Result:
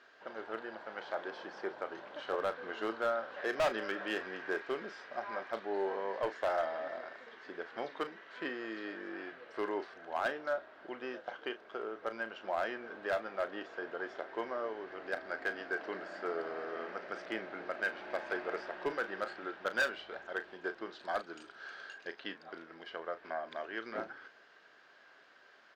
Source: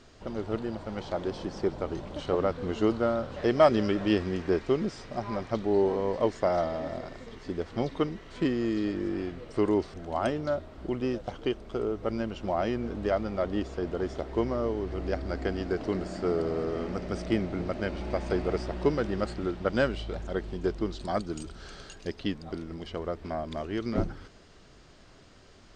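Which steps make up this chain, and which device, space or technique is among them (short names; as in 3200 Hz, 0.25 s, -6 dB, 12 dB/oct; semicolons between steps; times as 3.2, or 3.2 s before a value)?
megaphone (BPF 600–3400 Hz; bell 1600 Hz +11.5 dB 0.28 oct; hard clip -22.5 dBFS, distortion -11 dB; doubler 36 ms -11.5 dB); gain -3.5 dB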